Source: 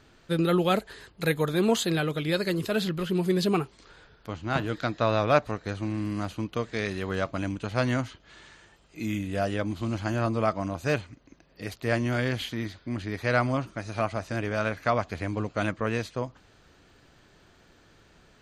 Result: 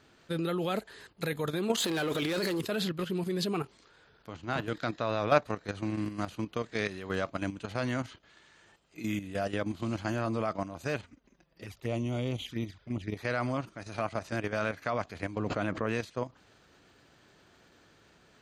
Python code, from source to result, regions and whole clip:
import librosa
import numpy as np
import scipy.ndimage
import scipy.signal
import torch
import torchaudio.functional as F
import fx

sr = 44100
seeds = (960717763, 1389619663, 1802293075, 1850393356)

y = fx.chain(x, sr, fx.peak_eq(hz=150.0, db=-9.5, octaves=0.56),
    fx.leveller(passes=3),
    fx.over_compress(threshold_db=-25.0, ratio=-1.0), at=(1.8, 2.61))
y = fx.chain(y, sr, fx.low_shelf(hz=75.0, db=11.5),
    fx.env_flanger(rest_ms=7.2, full_db=-26.0),
    fx.notch(hz=4300.0, q=12.0), at=(11.02, 13.17))
y = fx.chain(y, sr, fx.high_shelf(hz=2400.0, db=-9.0),
    fx.pre_swell(db_per_s=24.0), at=(15.38, 15.89))
y = fx.level_steps(y, sr, step_db=10)
y = fx.highpass(y, sr, hz=120.0, slope=6)